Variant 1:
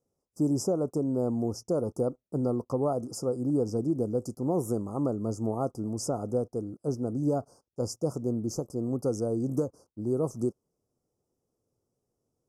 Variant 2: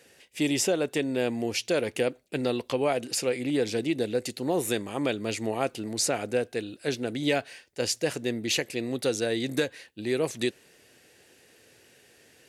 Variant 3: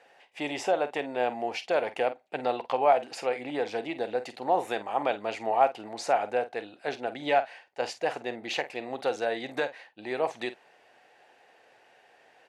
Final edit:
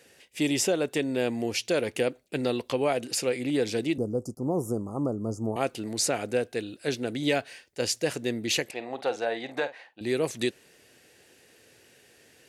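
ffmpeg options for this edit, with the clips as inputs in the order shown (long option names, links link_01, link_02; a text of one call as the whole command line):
ffmpeg -i take0.wav -i take1.wav -i take2.wav -filter_complex "[1:a]asplit=3[link_01][link_02][link_03];[link_01]atrim=end=3.982[link_04];[0:a]atrim=start=3.978:end=5.562[link_05];[link_02]atrim=start=5.558:end=8.712[link_06];[2:a]atrim=start=8.708:end=10.012[link_07];[link_03]atrim=start=10.008[link_08];[link_04][link_05]acrossfade=duration=0.004:curve1=hsin:curve2=hsin[link_09];[link_09][link_06]acrossfade=duration=0.004:curve1=hsin:curve2=hsin[link_10];[link_10][link_07]acrossfade=duration=0.004:curve1=hsin:curve2=hsin[link_11];[link_11][link_08]acrossfade=duration=0.004:curve1=hsin:curve2=hsin" out.wav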